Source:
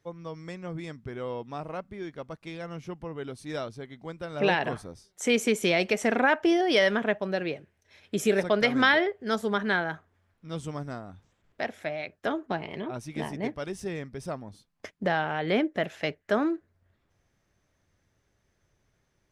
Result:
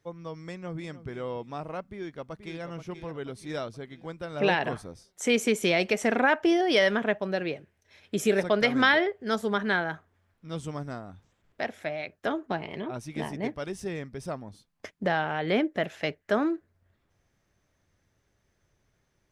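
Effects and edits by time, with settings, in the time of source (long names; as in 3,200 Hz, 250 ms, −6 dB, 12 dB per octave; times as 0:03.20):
0:00.51–0:01.07: delay throw 300 ms, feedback 25%, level −15 dB
0:01.81–0:02.63: delay throw 480 ms, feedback 50%, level −9 dB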